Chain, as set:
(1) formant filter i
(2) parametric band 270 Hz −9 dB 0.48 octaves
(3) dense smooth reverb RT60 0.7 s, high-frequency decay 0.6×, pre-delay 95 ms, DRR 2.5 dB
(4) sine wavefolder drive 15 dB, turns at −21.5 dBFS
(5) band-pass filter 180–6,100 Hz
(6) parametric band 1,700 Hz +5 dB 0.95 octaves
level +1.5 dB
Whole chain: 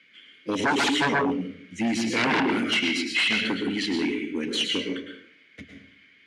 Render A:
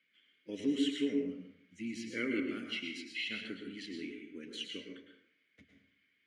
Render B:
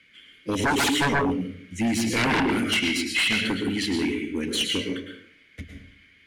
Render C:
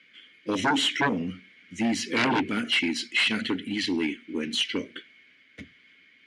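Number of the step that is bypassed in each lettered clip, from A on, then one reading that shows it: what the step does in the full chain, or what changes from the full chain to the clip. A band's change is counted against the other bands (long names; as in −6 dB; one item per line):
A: 4, change in crest factor +5.0 dB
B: 5, 125 Hz band +5.5 dB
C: 3, change in momentary loudness spread +4 LU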